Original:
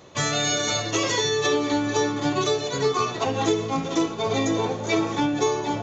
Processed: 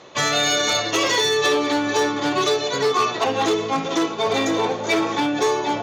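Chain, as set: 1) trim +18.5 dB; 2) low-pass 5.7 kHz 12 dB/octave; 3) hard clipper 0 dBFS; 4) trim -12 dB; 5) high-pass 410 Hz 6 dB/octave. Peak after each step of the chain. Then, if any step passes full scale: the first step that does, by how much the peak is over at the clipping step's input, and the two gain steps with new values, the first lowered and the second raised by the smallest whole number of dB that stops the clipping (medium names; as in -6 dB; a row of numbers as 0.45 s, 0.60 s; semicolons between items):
+9.5 dBFS, +9.0 dBFS, 0.0 dBFS, -12.0 dBFS, -8.5 dBFS; step 1, 9.0 dB; step 1 +9.5 dB, step 4 -3 dB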